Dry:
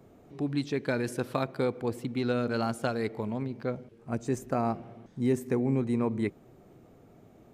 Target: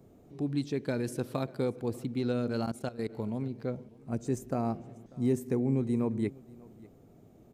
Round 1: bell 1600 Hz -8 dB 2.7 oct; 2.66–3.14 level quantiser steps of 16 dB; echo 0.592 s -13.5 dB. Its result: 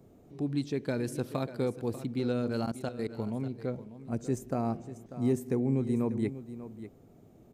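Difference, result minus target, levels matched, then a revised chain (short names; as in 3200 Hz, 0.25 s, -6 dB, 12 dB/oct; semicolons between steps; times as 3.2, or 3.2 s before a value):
echo-to-direct +10 dB
bell 1600 Hz -8 dB 2.7 oct; 2.66–3.14 level quantiser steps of 16 dB; echo 0.592 s -23.5 dB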